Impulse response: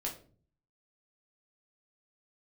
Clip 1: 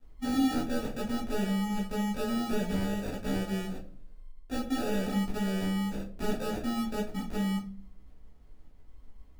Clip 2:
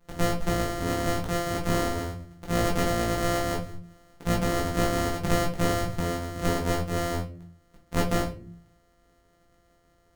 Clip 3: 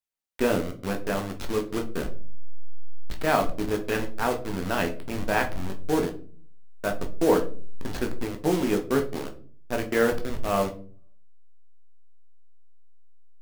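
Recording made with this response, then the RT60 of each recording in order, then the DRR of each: 2; 0.45, 0.45, 0.45 seconds; −6.5, −2.5, 3.0 decibels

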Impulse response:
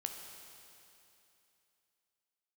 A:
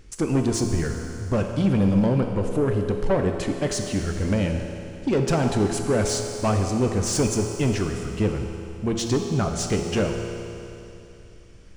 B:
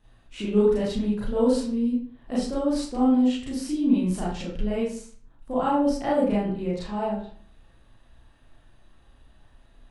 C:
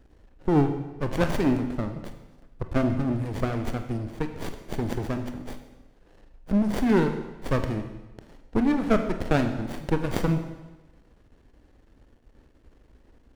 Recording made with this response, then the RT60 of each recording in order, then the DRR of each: A; 2.9, 0.50, 1.1 seconds; 3.0, −8.5, 6.5 decibels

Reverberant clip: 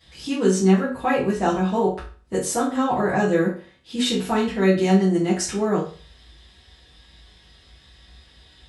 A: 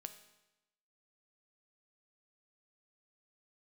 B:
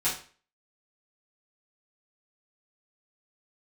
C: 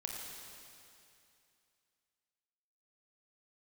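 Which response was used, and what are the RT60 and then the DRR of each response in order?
B; 0.95, 0.40, 2.6 seconds; 8.0, −11.0, −1.0 decibels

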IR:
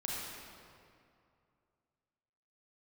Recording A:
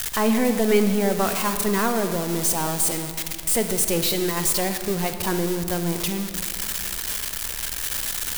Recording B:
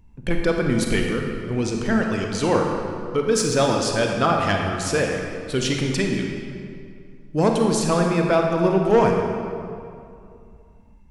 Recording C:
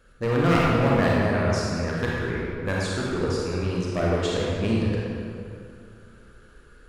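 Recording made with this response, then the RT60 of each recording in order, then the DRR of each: C; 2.4, 2.4, 2.5 seconds; 7.5, 1.5, −5.0 decibels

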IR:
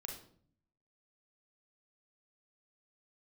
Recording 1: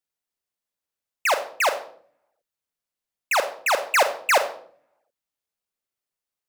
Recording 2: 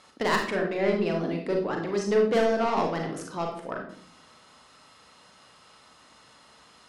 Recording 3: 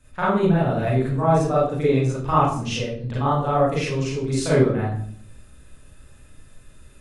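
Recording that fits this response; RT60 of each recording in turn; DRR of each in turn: 2; 0.55, 0.55, 0.55 seconds; 7.5, 1.5, −8.5 decibels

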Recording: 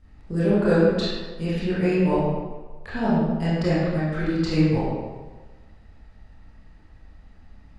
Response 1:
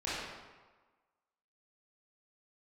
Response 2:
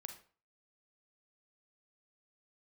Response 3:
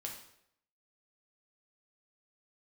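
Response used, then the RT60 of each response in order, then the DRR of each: 1; 1.3, 0.40, 0.75 seconds; −11.0, 5.5, −0.5 decibels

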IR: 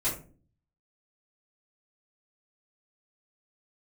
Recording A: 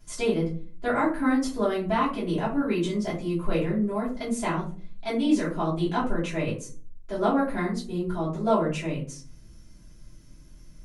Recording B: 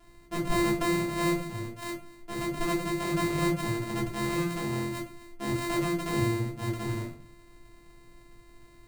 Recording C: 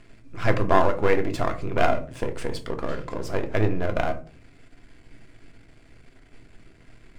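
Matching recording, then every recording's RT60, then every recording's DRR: A; 0.40, 0.40, 0.40 seconds; −11.5, −3.0, 5.5 decibels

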